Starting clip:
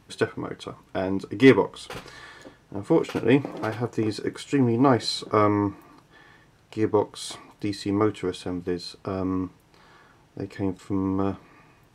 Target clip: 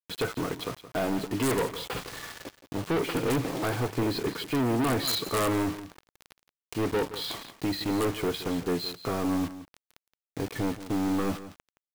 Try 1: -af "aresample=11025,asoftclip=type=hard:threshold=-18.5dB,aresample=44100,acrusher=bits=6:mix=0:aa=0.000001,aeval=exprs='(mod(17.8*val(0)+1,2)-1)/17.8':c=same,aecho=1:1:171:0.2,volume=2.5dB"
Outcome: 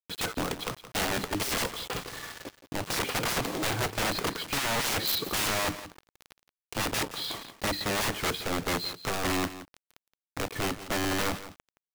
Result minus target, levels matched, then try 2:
hard clip: distortion -5 dB
-af "aresample=11025,asoftclip=type=hard:threshold=-26.5dB,aresample=44100,acrusher=bits=6:mix=0:aa=0.000001,aeval=exprs='(mod(17.8*val(0)+1,2)-1)/17.8':c=same,aecho=1:1:171:0.2,volume=2.5dB"

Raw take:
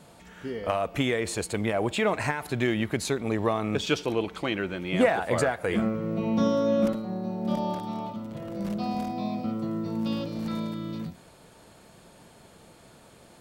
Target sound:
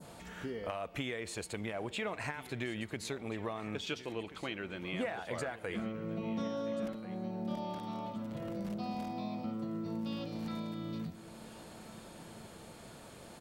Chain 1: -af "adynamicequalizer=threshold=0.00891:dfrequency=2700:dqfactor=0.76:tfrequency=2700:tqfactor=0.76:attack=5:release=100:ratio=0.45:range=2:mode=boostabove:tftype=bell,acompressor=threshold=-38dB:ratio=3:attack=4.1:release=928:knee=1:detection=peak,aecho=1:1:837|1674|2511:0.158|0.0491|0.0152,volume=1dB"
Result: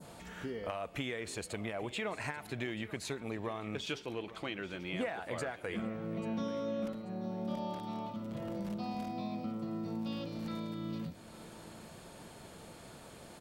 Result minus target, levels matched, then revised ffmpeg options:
echo 0.546 s early
-af "adynamicequalizer=threshold=0.00891:dfrequency=2700:dqfactor=0.76:tfrequency=2700:tqfactor=0.76:attack=5:release=100:ratio=0.45:range=2:mode=boostabove:tftype=bell,acompressor=threshold=-38dB:ratio=3:attack=4.1:release=928:knee=1:detection=peak,aecho=1:1:1383|2766|4149:0.158|0.0491|0.0152,volume=1dB"

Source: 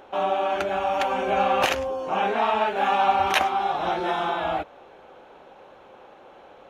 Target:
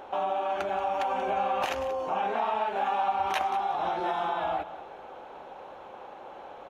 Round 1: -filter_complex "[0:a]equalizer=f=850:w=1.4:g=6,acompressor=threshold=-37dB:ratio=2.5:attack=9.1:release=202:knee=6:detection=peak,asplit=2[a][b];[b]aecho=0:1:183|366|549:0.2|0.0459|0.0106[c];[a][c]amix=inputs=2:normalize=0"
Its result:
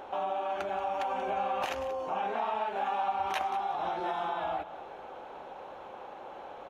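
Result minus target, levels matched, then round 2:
compressor: peak gain reduction +3.5 dB
-filter_complex "[0:a]equalizer=f=850:w=1.4:g=6,acompressor=threshold=-31dB:ratio=2.5:attack=9.1:release=202:knee=6:detection=peak,asplit=2[a][b];[b]aecho=0:1:183|366|549:0.2|0.0459|0.0106[c];[a][c]amix=inputs=2:normalize=0"

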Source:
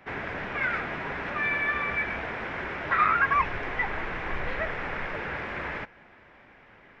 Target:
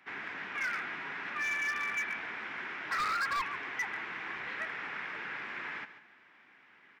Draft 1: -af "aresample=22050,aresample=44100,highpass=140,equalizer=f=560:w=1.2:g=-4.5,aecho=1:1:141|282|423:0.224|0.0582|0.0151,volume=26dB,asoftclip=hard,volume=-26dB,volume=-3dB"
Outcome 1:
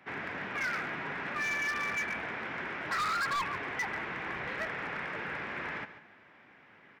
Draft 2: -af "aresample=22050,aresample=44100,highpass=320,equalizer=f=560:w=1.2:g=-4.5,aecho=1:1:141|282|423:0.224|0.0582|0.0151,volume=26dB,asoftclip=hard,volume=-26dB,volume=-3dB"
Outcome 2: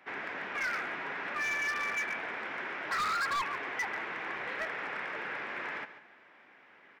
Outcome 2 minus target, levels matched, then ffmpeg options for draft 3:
500 Hz band +6.5 dB
-af "aresample=22050,aresample=44100,highpass=320,equalizer=f=560:w=1.2:g=-15,aecho=1:1:141|282|423:0.224|0.0582|0.0151,volume=26dB,asoftclip=hard,volume=-26dB,volume=-3dB"

